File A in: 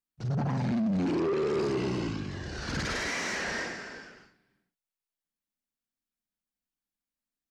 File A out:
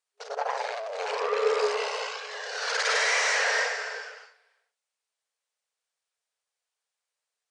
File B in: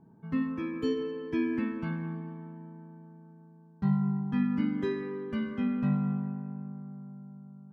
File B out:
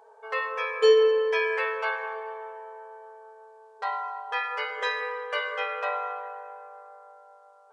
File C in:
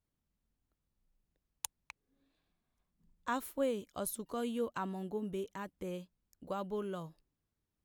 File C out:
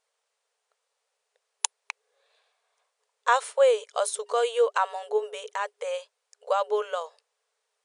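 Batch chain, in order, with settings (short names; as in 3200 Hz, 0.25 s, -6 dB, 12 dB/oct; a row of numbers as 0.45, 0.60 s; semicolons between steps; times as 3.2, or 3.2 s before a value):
FFT band-pass 410–10000 Hz; match loudness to -27 LUFS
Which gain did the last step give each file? +8.5, +15.5, +15.0 dB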